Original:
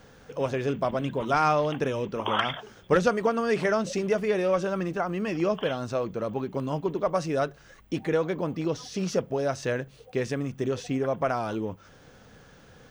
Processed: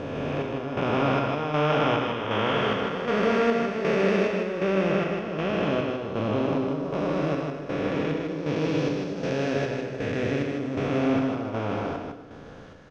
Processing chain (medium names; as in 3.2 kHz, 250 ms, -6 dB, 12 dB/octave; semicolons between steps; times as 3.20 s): spectral blur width 1040 ms; square tremolo 1.3 Hz, depth 65%, duty 55%; dynamic bell 2.6 kHz, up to +7 dB, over -55 dBFS, Q 1.1; in parallel at -2 dB: level held to a coarse grid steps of 22 dB; on the sum: Bessel low-pass 3.8 kHz, order 2; delay 155 ms -4.5 dB; on a send at -8 dB: reverberation RT60 1.0 s, pre-delay 4 ms; on the sum: trim +4.5 dB